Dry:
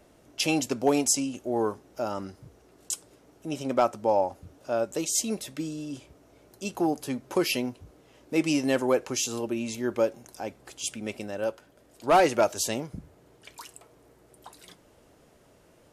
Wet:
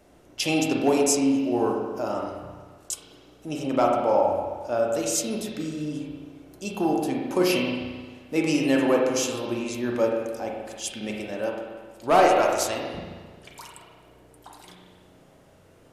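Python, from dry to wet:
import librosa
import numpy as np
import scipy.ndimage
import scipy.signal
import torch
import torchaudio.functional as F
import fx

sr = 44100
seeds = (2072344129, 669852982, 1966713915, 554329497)

y = fx.peak_eq(x, sr, hz=170.0, db=-12.5, octaves=1.3, at=(12.23, 12.97))
y = fx.rev_spring(y, sr, rt60_s=1.5, pass_ms=(33, 44), chirp_ms=20, drr_db=-1.0)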